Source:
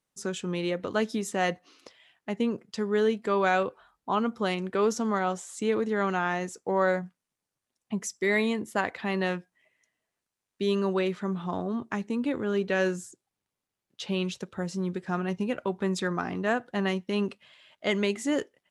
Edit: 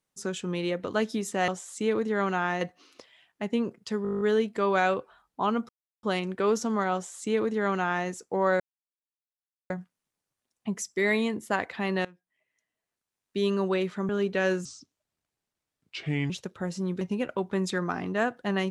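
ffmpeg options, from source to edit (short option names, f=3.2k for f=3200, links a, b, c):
-filter_complex "[0:a]asplit=19[a][b][c][d][e][f][g][h][i][j][k][l][m][n][o][p][q][r][s];[a]atrim=end=1.482[t];[b]atrim=start=5.288:end=6.422[u];[c]atrim=start=1.478:end=2.922[v];[d]atrim=start=2.898:end=2.922[w];[e]atrim=start=2.898:end=2.922[x];[f]atrim=start=2.898:end=2.922[y];[g]atrim=start=2.898:end=2.922[z];[h]atrim=start=2.898:end=2.922[aa];[i]atrim=start=2.898:end=2.922[ab];[j]atrim=start=2.898:end=2.922[ac];[k]atrim=start=2.898:end=2.922[ad];[l]atrim=start=2.898:end=4.38,asetpts=PTS-STARTPTS,afade=t=out:st=1.478:d=0.004:c=hsin,apad=pad_dur=0.34[ae];[m]atrim=start=4.38:end=6.95,asetpts=PTS-STARTPTS,afade=t=in:d=0.004:c=hsin,afade=t=out:st=2.566:d=0.004:c=hsin,apad=pad_dur=1.1[af];[n]atrim=start=6.95:end=9.3,asetpts=PTS-STARTPTS,afade=t=in:d=0.004:c=hsin,afade=t=out:st=2.346:d=0.004:c=hsin:silence=0.0794328[ag];[o]atrim=start=9.3:end=11.342,asetpts=PTS-STARTPTS,afade=t=in:d=1.34:silence=0.0794328[ah];[p]atrim=start=12.438:end=13.004[ai];[q]atrim=start=13:end=14.27,asetpts=PTS-STARTPTS,asetrate=33957,aresample=44100,atrim=end_sample=72736,asetpts=PTS-STARTPTS[aj];[r]atrim=start=14.266:end=14.982[ak];[s]atrim=start=15.298[al];[t][u]acrossfade=d=0.004:c1=hsin:c2=hsin[am];[am][v]acrossfade=d=0.004:c1=hsin:c2=hsin[an];[an][w]acrossfade=d=0.004:c1=hsin:c2=hsin[ao];[ao][x]acrossfade=d=0.004:c1=hsin:c2=hsin[ap];[ap][y]acrossfade=d=0.004:c1=hsin:c2=hsin[aq];[aq][z]acrossfade=d=0.004:c1=hsin:c2=hsin[ar];[ar][aa]acrossfade=d=0.004:c1=hsin:c2=hsin[as];[as][ab]acrossfade=d=0.004:c1=hsin:c2=hsin[at];[at][ac]acrossfade=d=0.004:c1=hsin:c2=hsin[au];[au][ad]acrossfade=d=0.004:c1=hsin:c2=hsin[av];[ae][af][ag][ah]concat=n=4:v=0:a=1[aw];[av][aw]acrossfade=d=0.004:c1=hsin:c2=hsin[ax];[ax][ai]acrossfade=d=0.004:c1=hsin:c2=hsin[ay];[ay][aj]acrossfade=d=0.004:c1=hsin:c2=hsin[az];[az][ak]acrossfade=d=0.004:c1=hsin:c2=hsin[ba];[ba][al]acrossfade=d=0.004:c1=hsin:c2=hsin"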